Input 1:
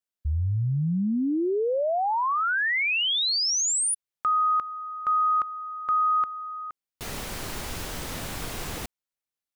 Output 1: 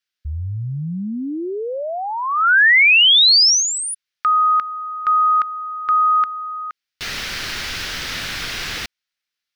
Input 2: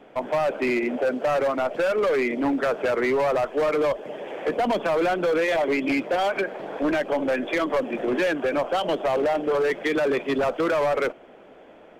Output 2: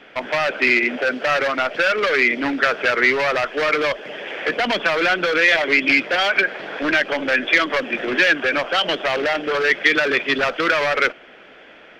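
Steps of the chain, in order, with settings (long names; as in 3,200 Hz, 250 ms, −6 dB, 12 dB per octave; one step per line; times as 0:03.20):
flat-topped bell 2,800 Hz +13.5 dB 2.4 octaves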